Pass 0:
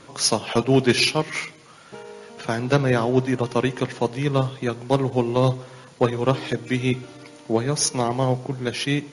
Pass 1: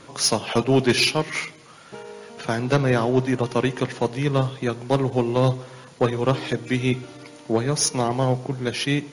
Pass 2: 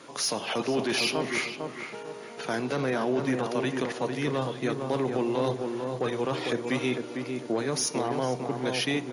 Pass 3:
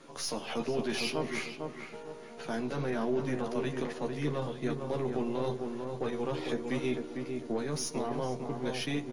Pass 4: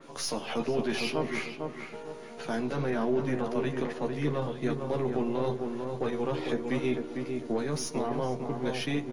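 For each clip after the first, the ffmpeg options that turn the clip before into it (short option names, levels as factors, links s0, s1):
-af "acontrast=77,volume=0.501"
-filter_complex "[0:a]highpass=220,alimiter=limit=0.141:level=0:latency=1:release=14,asplit=2[s0][s1];[s1]adelay=452,lowpass=f=1500:p=1,volume=0.596,asplit=2[s2][s3];[s3]adelay=452,lowpass=f=1500:p=1,volume=0.34,asplit=2[s4][s5];[s5]adelay=452,lowpass=f=1500:p=1,volume=0.34,asplit=2[s6][s7];[s7]adelay=452,lowpass=f=1500:p=1,volume=0.34[s8];[s0][s2][s4][s6][s8]amix=inputs=5:normalize=0,volume=0.794"
-filter_complex "[0:a]aeval=exprs='if(lt(val(0),0),0.708*val(0),val(0))':c=same,lowshelf=f=410:g=6.5,asplit=2[s0][s1];[s1]adelay=13,volume=0.562[s2];[s0][s2]amix=inputs=2:normalize=0,volume=0.398"
-af "adynamicequalizer=threshold=0.00251:dfrequency=3400:dqfactor=0.7:tfrequency=3400:tqfactor=0.7:attack=5:release=100:ratio=0.375:range=3:mode=cutabove:tftype=highshelf,volume=1.41"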